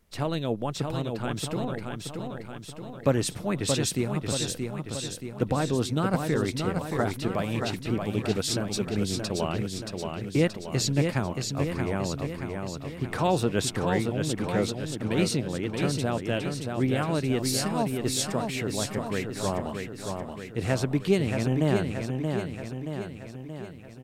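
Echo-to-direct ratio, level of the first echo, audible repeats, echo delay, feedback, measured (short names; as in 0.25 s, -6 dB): -3.5 dB, -5.0 dB, 7, 0.627 s, 57%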